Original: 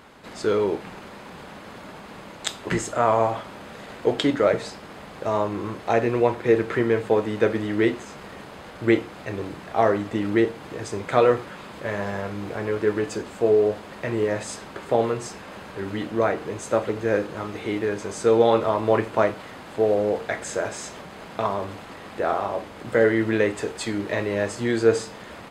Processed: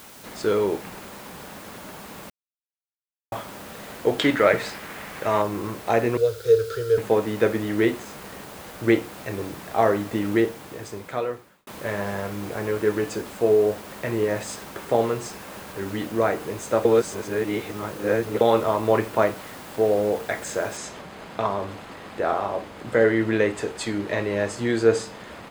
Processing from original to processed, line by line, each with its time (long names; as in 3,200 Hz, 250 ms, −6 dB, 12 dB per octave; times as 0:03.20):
0:02.30–0:03.32: silence
0:04.21–0:05.42: parametric band 2,000 Hz +9 dB 1.4 octaves
0:06.17–0:06.98: drawn EQ curve 110 Hz 0 dB, 220 Hz −30 dB, 320 Hz −24 dB, 450 Hz +4 dB, 940 Hz −30 dB, 1,400 Hz +1 dB, 2,000 Hz −22 dB, 3,400 Hz 0 dB, 4,900 Hz +9 dB, 8,200 Hz +1 dB
0:10.31–0:11.67: fade out
0:16.85–0:18.41: reverse
0:20.77: noise floor change −47 dB −68 dB